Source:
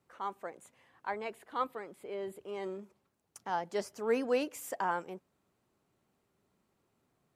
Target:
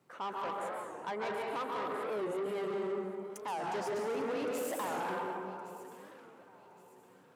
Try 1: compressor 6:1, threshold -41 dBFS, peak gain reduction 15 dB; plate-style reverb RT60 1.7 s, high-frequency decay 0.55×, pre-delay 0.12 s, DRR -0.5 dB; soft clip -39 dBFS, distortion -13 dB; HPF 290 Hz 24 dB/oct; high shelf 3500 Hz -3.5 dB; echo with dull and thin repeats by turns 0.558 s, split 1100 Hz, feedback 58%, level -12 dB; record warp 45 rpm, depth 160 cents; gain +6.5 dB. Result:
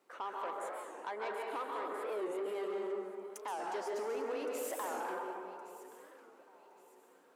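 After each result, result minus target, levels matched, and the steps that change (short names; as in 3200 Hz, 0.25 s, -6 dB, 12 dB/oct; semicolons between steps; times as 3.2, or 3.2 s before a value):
125 Hz band -15.0 dB; compressor: peak gain reduction +6 dB
change: HPF 120 Hz 24 dB/oct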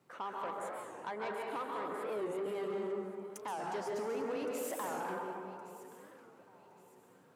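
compressor: peak gain reduction +6 dB
change: compressor 6:1, threshold -34 dBFS, peak gain reduction 9.5 dB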